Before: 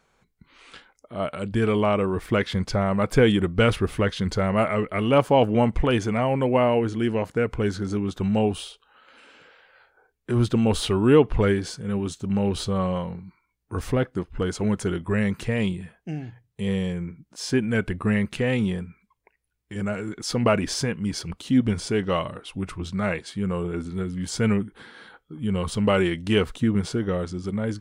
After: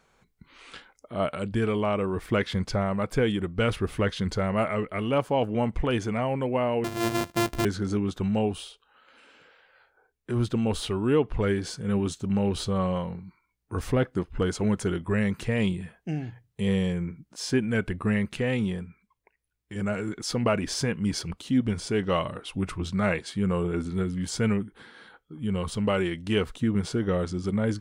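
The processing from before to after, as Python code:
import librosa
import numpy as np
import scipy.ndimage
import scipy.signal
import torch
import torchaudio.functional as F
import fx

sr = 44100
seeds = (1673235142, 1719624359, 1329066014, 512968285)

y = fx.sample_sort(x, sr, block=128, at=(6.84, 7.65))
y = fx.rider(y, sr, range_db=4, speed_s=0.5)
y = y * 10.0 ** (-3.0 / 20.0)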